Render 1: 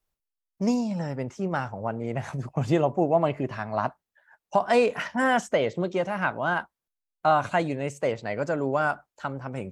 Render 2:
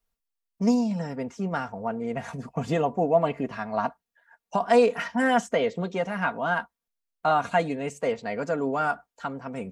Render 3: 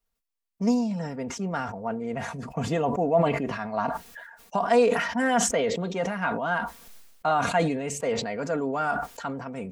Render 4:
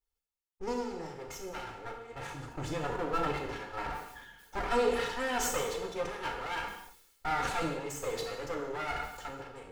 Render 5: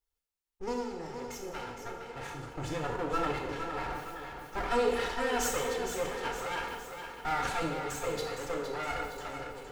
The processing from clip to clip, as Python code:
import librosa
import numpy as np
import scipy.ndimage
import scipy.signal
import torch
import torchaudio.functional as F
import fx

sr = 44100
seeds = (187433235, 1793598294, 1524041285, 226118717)

y1 = x + 0.63 * np.pad(x, (int(4.3 * sr / 1000.0), 0))[:len(x)]
y1 = F.gain(torch.from_numpy(y1), -1.5).numpy()
y2 = fx.sustainer(y1, sr, db_per_s=48.0)
y2 = F.gain(torch.from_numpy(y2), -1.5).numpy()
y3 = fx.lower_of_two(y2, sr, delay_ms=2.3)
y3 = fx.rev_gated(y3, sr, seeds[0], gate_ms=290, shape='falling', drr_db=1.0)
y3 = F.gain(torch.from_numpy(y3), -8.0).numpy()
y4 = fx.echo_feedback(y3, sr, ms=463, feedback_pct=49, wet_db=-8.0)